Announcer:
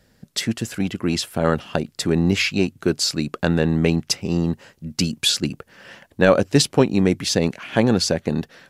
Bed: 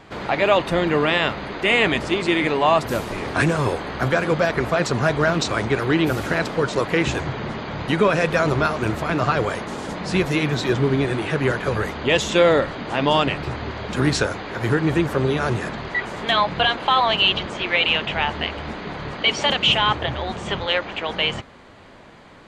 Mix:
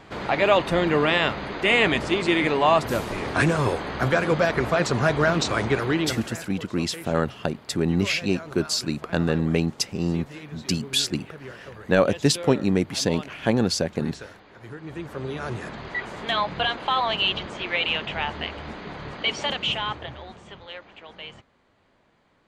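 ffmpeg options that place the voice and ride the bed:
ffmpeg -i stem1.wav -i stem2.wav -filter_complex "[0:a]adelay=5700,volume=-4dB[link_01];[1:a]volume=12.5dB,afade=type=out:start_time=5.72:duration=0.7:silence=0.125893,afade=type=in:start_time=14.8:duration=1.14:silence=0.199526,afade=type=out:start_time=19.22:duration=1.29:silence=0.237137[link_02];[link_01][link_02]amix=inputs=2:normalize=0" out.wav

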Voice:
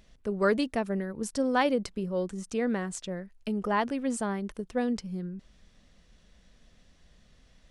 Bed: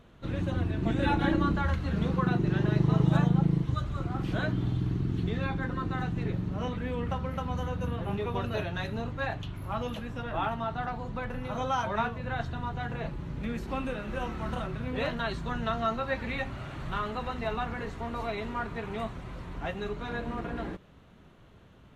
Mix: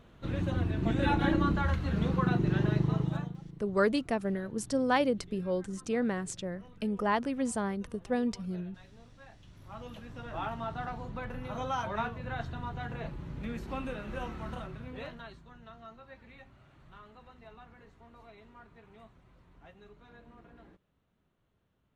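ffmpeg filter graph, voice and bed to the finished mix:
ffmpeg -i stem1.wav -i stem2.wav -filter_complex "[0:a]adelay=3350,volume=-1.5dB[link_01];[1:a]volume=17dB,afade=type=out:start_time=2.62:duration=0.76:silence=0.0891251,afade=type=in:start_time=9.37:duration=1.32:silence=0.125893,afade=type=out:start_time=14.19:duration=1.26:silence=0.149624[link_02];[link_01][link_02]amix=inputs=2:normalize=0" out.wav

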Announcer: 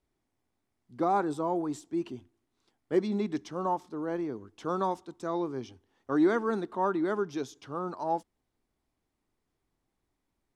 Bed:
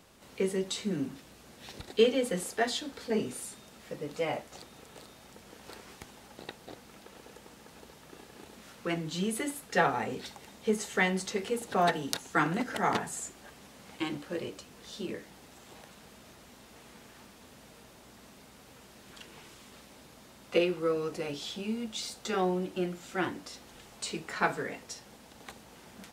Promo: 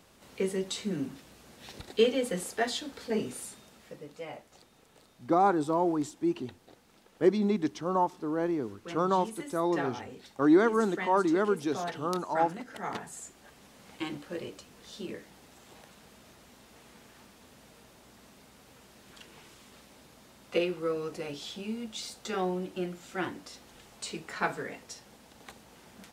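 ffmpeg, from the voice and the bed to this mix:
ffmpeg -i stem1.wav -i stem2.wav -filter_complex "[0:a]adelay=4300,volume=3dB[link_01];[1:a]volume=7dB,afade=type=out:start_time=3.44:duration=0.71:silence=0.354813,afade=type=in:start_time=12.71:duration=1.15:silence=0.421697[link_02];[link_01][link_02]amix=inputs=2:normalize=0" out.wav

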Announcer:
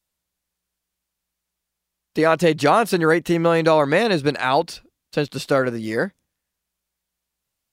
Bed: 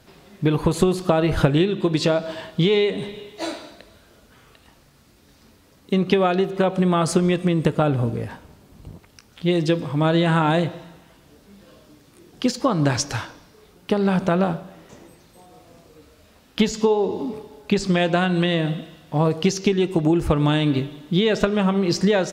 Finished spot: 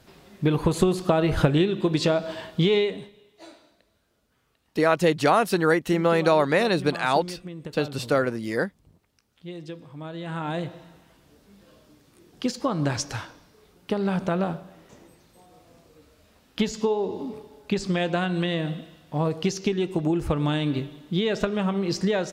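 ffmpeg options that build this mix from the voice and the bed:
ffmpeg -i stem1.wav -i stem2.wav -filter_complex "[0:a]adelay=2600,volume=-3.5dB[link_01];[1:a]volume=10dB,afade=type=out:start_time=2.77:duration=0.33:silence=0.16788,afade=type=in:start_time=10.16:duration=0.81:silence=0.237137[link_02];[link_01][link_02]amix=inputs=2:normalize=0" out.wav

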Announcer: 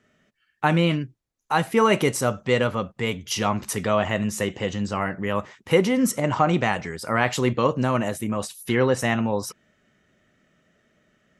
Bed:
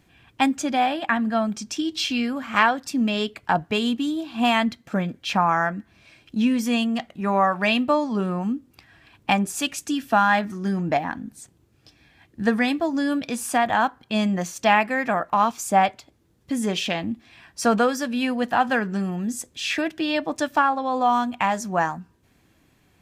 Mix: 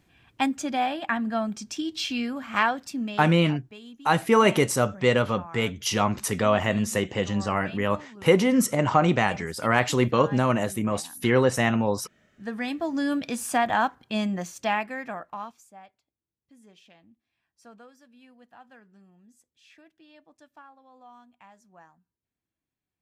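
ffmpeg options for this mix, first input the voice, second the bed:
ffmpeg -i stem1.wav -i stem2.wav -filter_complex "[0:a]adelay=2550,volume=0dB[link_01];[1:a]volume=15dB,afade=type=out:start_time=2.8:duration=0.55:silence=0.133352,afade=type=in:start_time=12.34:duration=0.71:silence=0.105925,afade=type=out:start_time=13.78:duration=1.93:silence=0.0398107[link_02];[link_01][link_02]amix=inputs=2:normalize=0" out.wav

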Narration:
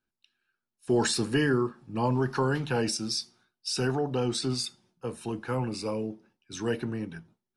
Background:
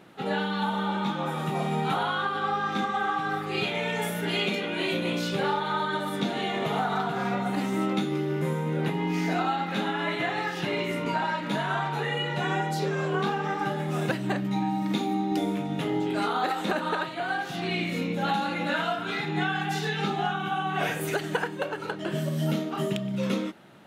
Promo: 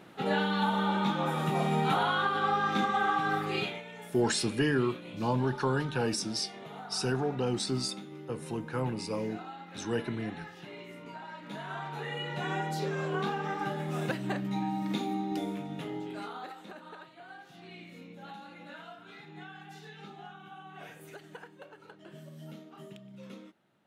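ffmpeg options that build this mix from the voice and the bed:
ffmpeg -i stem1.wav -i stem2.wav -filter_complex "[0:a]adelay=3250,volume=-2.5dB[link_01];[1:a]volume=11.5dB,afade=type=out:start_time=3.46:duration=0.37:silence=0.149624,afade=type=in:start_time=11.25:duration=1.44:silence=0.251189,afade=type=out:start_time=15.03:duration=1.62:silence=0.188365[link_02];[link_01][link_02]amix=inputs=2:normalize=0" out.wav

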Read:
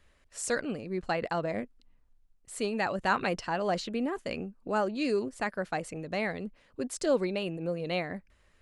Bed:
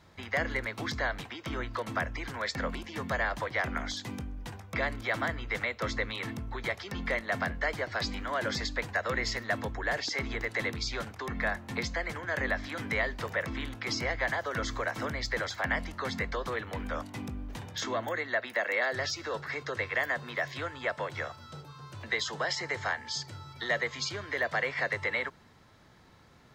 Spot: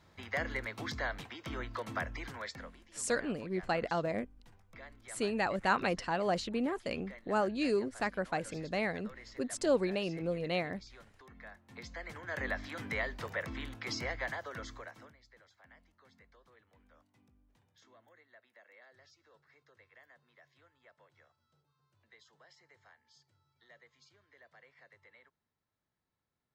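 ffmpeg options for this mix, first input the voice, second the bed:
ffmpeg -i stem1.wav -i stem2.wav -filter_complex "[0:a]adelay=2600,volume=-2dB[link_01];[1:a]volume=10dB,afade=type=out:start_time=2.24:duration=0.49:silence=0.16788,afade=type=in:start_time=11.65:duration=0.81:silence=0.177828,afade=type=out:start_time=14.04:duration=1.13:silence=0.0562341[link_02];[link_01][link_02]amix=inputs=2:normalize=0" out.wav

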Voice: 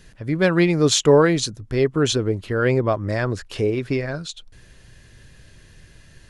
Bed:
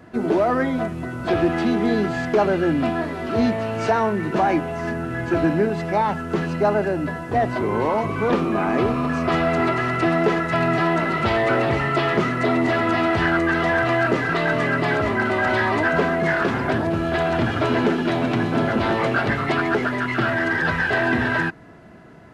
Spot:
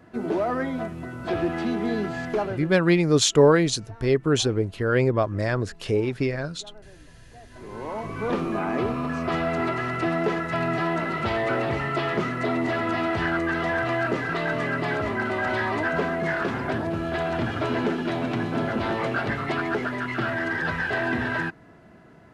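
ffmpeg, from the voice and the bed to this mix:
ffmpeg -i stem1.wav -i stem2.wav -filter_complex "[0:a]adelay=2300,volume=-2dB[link_01];[1:a]volume=17.5dB,afade=type=out:start_time=2.31:duration=0.43:silence=0.0707946,afade=type=in:start_time=7.5:duration=0.89:silence=0.0668344[link_02];[link_01][link_02]amix=inputs=2:normalize=0" out.wav

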